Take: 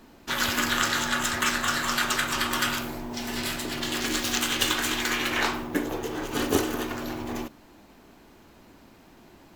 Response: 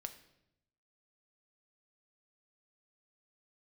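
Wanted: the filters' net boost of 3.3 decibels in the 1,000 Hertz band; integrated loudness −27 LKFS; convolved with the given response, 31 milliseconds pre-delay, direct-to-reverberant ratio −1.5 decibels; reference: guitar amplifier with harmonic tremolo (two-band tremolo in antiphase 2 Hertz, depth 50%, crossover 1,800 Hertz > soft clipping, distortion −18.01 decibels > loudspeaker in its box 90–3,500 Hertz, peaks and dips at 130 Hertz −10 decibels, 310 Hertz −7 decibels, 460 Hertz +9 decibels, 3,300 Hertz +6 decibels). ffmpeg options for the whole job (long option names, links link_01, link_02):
-filter_complex "[0:a]equalizer=frequency=1000:width_type=o:gain=4,asplit=2[link_01][link_02];[1:a]atrim=start_sample=2205,adelay=31[link_03];[link_02][link_03]afir=irnorm=-1:irlink=0,volume=5dB[link_04];[link_01][link_04]amix=inputs=2:normalize=0,acrossover=split=1800[link_05][link_06];[link_05]aeval=exprs='val(0)*(1-0.5/2+0.5/2*cos(2*PI*2*n/s))':channel_layout=same[link_07];[link_06]aeval=exprs='val(0)*(1-0.5/2-0.5/2*cos(2*PI*2*n/s))':channel_layout=same[link_08];[link_07][link_08]amix=inputs=2:normalize=0,asoftclip=threshold=-15dB,highpass=90,equalizer=frequency=130:width_type=q:width=4:gain=-10,equalizer=frequency=310:width_type=q:width=4:gain=-7,equalizer=frequency=460:width_type=q:width=4:gain=9,equalizer=frequency=3300:width_type=q:width=4:gain=6,lowpass=frequency=3500:width=0.5412,lowpass=frequency=3500:width=1.3066,volume=-1.5dB"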